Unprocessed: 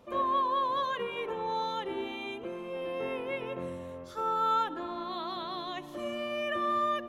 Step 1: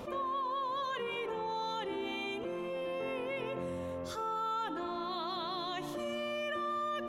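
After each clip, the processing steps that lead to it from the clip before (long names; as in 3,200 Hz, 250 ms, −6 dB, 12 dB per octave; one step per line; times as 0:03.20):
dynamic equaliser 6,800 Hz, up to +4 dB, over −56 dBFS, Q 0.85
envelope flattener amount 70%
level −8.5 dB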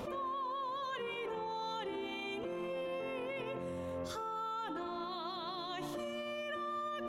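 brickwall limiter −35 dBFS, peak gain reduction 8.5 dB
level +2.5 dB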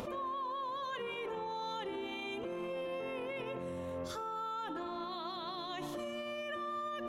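upward compression, threshold −44 dBFS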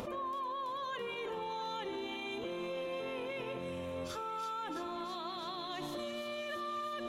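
hum with harmonics 400 Hz, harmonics 7, −68 dBFS −5 dB per octave
delay with a high-pass on its return 331 ms, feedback 78%, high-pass 3,000 Hz, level −5.5 dB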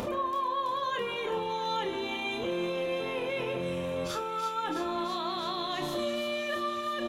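double-tracking delay 29 ms −6.5 dB
level +7 dB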